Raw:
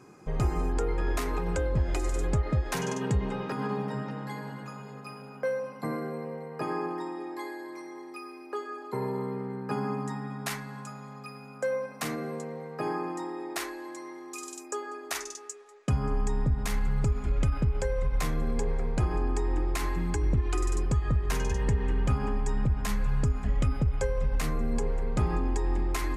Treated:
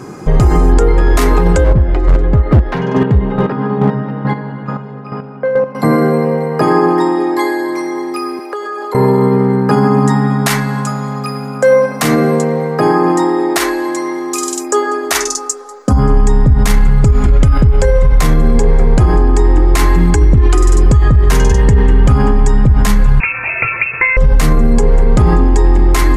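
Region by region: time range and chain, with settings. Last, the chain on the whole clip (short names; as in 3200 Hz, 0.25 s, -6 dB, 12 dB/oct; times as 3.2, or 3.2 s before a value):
1.64–5.75 air absorption 350 m + chopper 2.3 Hz, depth 60%, duty 20% + overloaded stage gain 28.5 dB
8.39–8.95 HPF 380 Hz 24 dB/oct + compressor 5:1, threshold -41 dBFS
15.28–15.99 band shelf 2600 Hz -10.5 dB 1.2 oct + comb 3.9 ms, depth 68%
23.2–24.17 HPF 340 Hz 6 dB/oct + inverted band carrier 2600 Hz
whole clip: low shelf 430 Hz +3.5 dB; notch 2500 Hz, Q 20; maximiser +22.5 dB; gain -1 dB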